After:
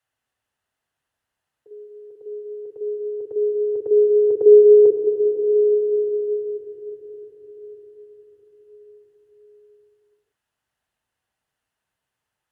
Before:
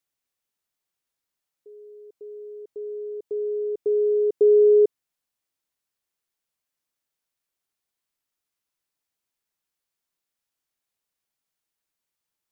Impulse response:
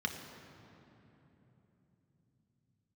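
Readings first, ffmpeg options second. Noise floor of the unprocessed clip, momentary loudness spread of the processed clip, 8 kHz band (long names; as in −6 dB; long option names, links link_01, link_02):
below −85 dBFS, 24 LU, can't be measured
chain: -filter_complex "[1:a]atrim=start_sample=2205,asetrate=23373,aresample=44100[link_01];[0:a][link_01]afir=irnorm=-1:irlink=0"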